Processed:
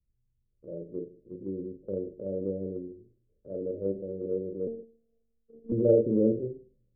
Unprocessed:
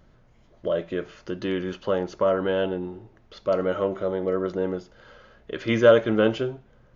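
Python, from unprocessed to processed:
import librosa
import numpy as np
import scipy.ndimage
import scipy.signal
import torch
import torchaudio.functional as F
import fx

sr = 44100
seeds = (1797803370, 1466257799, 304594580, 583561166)

y = fx.spec_steps(x, sr, hold_ms=50)
y = scipy.signal.sosfilt(scipy.signal.butter(8, 510.0, 'lowpass', fs=sr, output='sos'), y)
y = fx.doubler(y, sr, ms=41.0, db=-6)
y = fx.robotise(y, sr, hz=228.0, at=(4.67, 5.72))
y = y + 10.0 ** (-18.0 / 20.0) * np.pad(y, (int(158 * sr / 1000.0), 0))[:len(y)]
y = fx.band_widen(y, sr, depth_pct=70)
y = y * librosa.db_to_amplitude(-6.0)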